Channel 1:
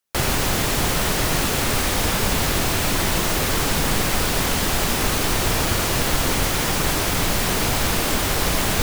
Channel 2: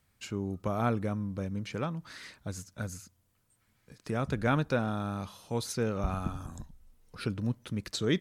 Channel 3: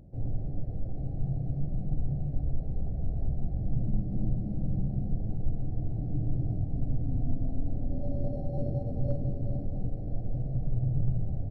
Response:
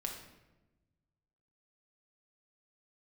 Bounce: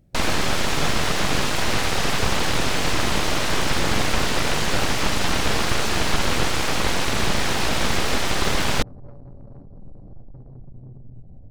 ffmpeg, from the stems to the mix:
-filter_complex "[0:a]lowpass=5300,aeval=exprs='abs(val(0))':channel_layout=same,volume=2.5dB[link_01];[1:a]volume=-7dB[link_02];[2:a]alimiter=limit=-20dB:level=0:latency=1:release=351,dynaudnorm=framelen=120:gausssize=13:maxgain=3dB,asoftclip=type=tanh:threshold=-32dB,volume=-8.5dB,asplit=2[link_03][link_04];[link_04]volume=-7dB[link_05];[3:a]atrim=start_sample=2205[link_06];[link_05][link_06]afir=irnorm=-1:irlink=0[link_07];[link_01][link_02][link_03][link_07]amix=inputs=4:normalize=0"

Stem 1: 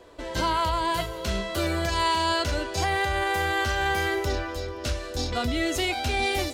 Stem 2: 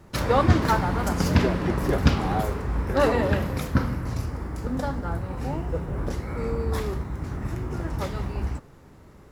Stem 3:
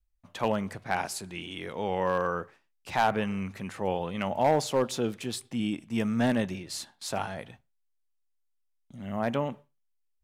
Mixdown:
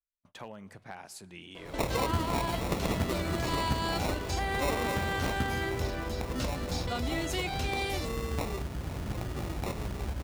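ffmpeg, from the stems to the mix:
ffmpeg -i stem1.wav -i stem2.wav -i stem3.wav -filter_complex "[0:a]adelay=1550,volume=1.5dB[link_01];[1:a]aexciter=amount=13:drive=5:freq=7600,acrusher=samples=28:mix=1:aa=0.000001,adelay=1650,volume=0dB[link_02];[2:a]agate=range=-21dB:threshold=-54dB:ratio=16:detection=peak,acompressor=threshold=-33dB:ratio=5,volume=-7.5dB[link_03];[link_01][link_02][link_03]amix=inputs=3:normalize=0,acompressor=threshold=-36dB:ratio=2" out.wav

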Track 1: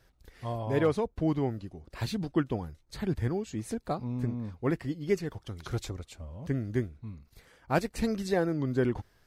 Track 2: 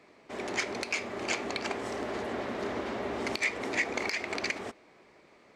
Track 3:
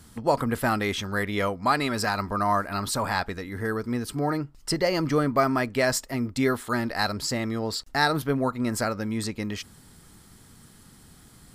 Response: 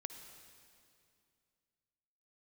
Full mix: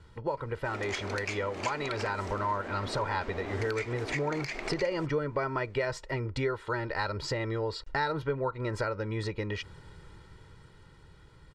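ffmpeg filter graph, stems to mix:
-filter_complex "[1:a]adelay=350,volume=0dB[link_01];[2:a]lowpass=3000,aecho=1:1:2.1:0.83,dynaudnorm=framelen=310:gausssize=13:maxgain=11.5dB,volume=-4.5dB[link_02];[link_01][link_02]amix=inputs=2:normalize=0,acompressor=threshold=-31dB:ratio=3"

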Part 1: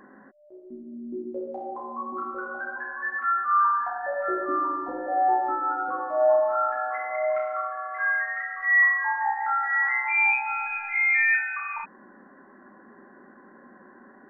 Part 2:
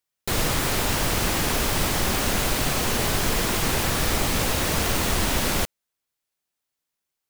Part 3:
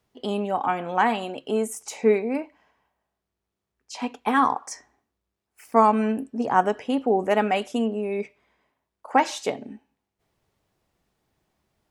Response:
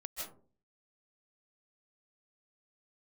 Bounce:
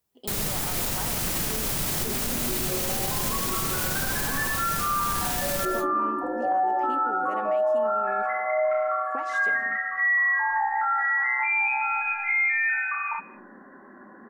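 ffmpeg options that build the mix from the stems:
-filter_complex "[0:a]adelay=1350,volume=2.5dB,asplit=2[link_01][link_02];[link_02]volume=-15.5dB[link_03];[1:a]equalizer=frequency=160:width=1.5:gain=6,crystalizer=i=1.5:c=0,volume=-7dB,asplit=2[link_04][link_05];[link_05]volume=-7.5dB[link_06];[2:a]acompressor=threshold=-23dB:ratio=6,volume=-11.5dB,asplit=3[link_07][link_08][link_09];[link_08]volume=-15dB[link_10];[link_09]apad=whole_len=321833[link_11];[link_04][link_11]sidechaincompress=threshold=-38dB:ratio=8:attack=9.8:release=390[link_12];[3:a]atrim=start_sample=2205[link_13];[link_03][link_06][link_10]amix=inputs=3:normalize=0[link_14];[link_14][link_13]afir=irnorm=-1:irlink=0[link_15];[link_01][link_12][link_07][link_15]amix=inputs=4:normalize=0,alimiter=limit=-17.5dB:level=0:latency=1:release=32"

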